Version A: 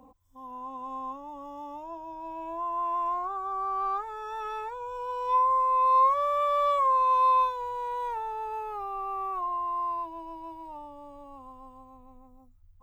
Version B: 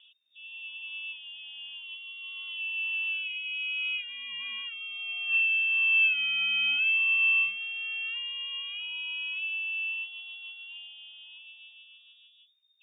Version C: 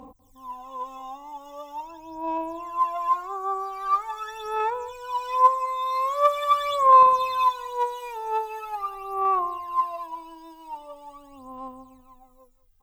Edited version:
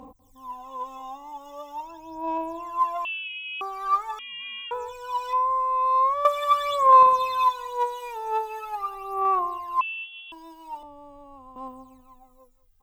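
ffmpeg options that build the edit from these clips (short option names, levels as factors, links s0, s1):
-filter_complex "[1:a]asplit=3[s0][s1][s2];[0:a]asplit=2[s3][s4];[2:a]asplit=6[s5][s6][s7][s8][s9][s10];[s5]atrim=end=3.052[s11];[s0]atrim=start=3.048:end=3.612[s12];[s6]atrim=start=3.608:end=4.192[s13];[s1]atrim=start=4.188:end=4.712[s14];[s7]atrim=start=4.708:end=5.332[s15];[s3]atrim=start=5.328:end=6.252[s16];[s8]atrim=start=6.248:end=9.812[s17];[s2]atrim=start=9.808:end=10.322[s18];[s9]atrim=start=10.318:end=10.832[s19];[s4]atrim=start=10.828:end=11.562[s20];[s10]atrim=start=11.558[s21];[s11][s12]acrossfade=d=0.004:c1=hsin:c2=hsin[s22];[s22][s13]acrossfade=d=0.004:c1=hsin:c2=hsin[s23];[s23][s14]acrossfade=d=0.004:c1=hsin:c2=hsin[s24];[s24][s15]acrossfade=d=0.004:c1=hsin:c2=hsin[s25];[s25][s16]acrossfade=d=0.004:c1=hsin:c2=hsin[s26];[s26][s17]acrossfade=d=0.004:c1=hsin:c2=hsin[s27];[s27][s18]acrossfade=d=0.004:c1=hsin:c2=hsin[s28];[s28][s19]acrossfade=d=0.004:c1=hsin:c2=hsin[s29];[s29][s20]acrossfade=d=0.004:c1=hsin:c2=hsin[s30];[s30][s21]acrossfade=d=0.004:c1=hsin:c2=hsin"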